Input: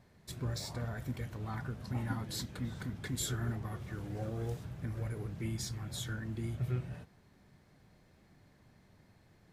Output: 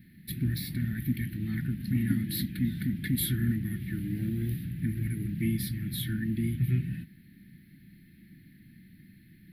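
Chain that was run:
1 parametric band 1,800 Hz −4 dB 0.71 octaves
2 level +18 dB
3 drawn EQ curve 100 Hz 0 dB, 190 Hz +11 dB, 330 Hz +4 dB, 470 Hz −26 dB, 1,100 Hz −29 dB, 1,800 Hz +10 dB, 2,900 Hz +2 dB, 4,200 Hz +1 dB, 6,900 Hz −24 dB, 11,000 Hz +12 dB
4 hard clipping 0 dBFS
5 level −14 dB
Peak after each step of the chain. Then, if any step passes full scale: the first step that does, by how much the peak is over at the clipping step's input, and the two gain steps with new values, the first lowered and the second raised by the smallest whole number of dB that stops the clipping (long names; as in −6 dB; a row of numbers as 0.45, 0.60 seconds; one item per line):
−23.5, −5.5, −2.0, −2.0, −16.0 dBFS
no step passes full scale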